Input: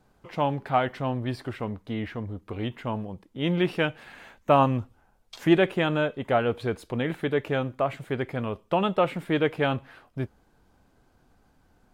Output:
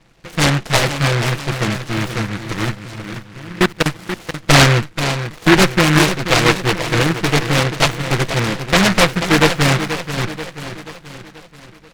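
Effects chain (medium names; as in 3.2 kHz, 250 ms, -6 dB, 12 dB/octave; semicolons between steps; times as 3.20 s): comb filter that takes the minimum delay 6 ms; low-pass 1.3 kHz 12 dB/octave; 2.75–3.86 s: level held to a coarse grid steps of 23 dB; on a send: feedback delay 483 ms, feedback 51%, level -10 dB; on the sum: loudness maximiser +13.5 dB; delay time shaken by noise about 1.5 kHz, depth 0.31 ms; trim -1 dB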